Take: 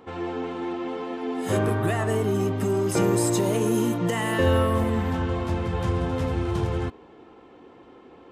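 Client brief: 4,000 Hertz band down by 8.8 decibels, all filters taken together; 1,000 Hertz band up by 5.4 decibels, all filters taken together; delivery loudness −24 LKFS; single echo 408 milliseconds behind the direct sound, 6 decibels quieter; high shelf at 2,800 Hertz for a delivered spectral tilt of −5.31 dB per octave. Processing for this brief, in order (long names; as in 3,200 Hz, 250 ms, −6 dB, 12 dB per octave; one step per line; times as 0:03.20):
parametric band 1,000 Hz +8 dB
high-shelf EQ 2,800 Hz −8.5 dB
parametric band 4,000 Hz −7 dB
single-tap delay 408 ms −6 dB
level −0.5 dB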